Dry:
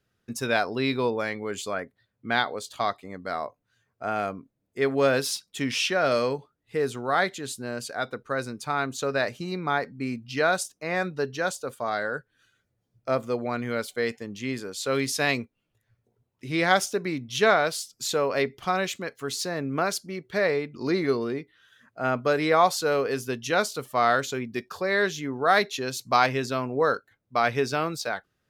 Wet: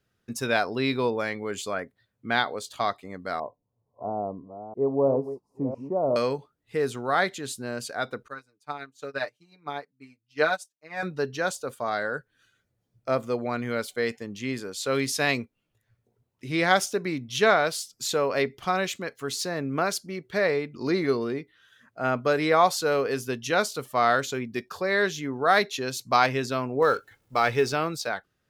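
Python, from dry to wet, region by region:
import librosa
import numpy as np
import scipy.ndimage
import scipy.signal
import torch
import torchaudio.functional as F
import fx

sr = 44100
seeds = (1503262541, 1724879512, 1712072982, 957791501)

y = fx.chain(x, sr, fx.reverse_delay(ms=335, wet_db=-10),
    fx.ellip_lowpass(hz=990.0, order=4, stop_db=40), at=(3.4, 6.16))
y = fx.chain(y, sr, fx.low_shelf(hz=210.0, db=-9.5),
    fx.comb(ms=6.7, depth=0.78),
    fx.upward_expand(threshold_db=-38.0, expansion=2.5), at=(8.28, 11.03))
y = fx.chain(y, sr, fx.law_mismatch(coded='mu'),
    fx.comb(ms=2.3, depth=0.31), at=(26.82, 27.73))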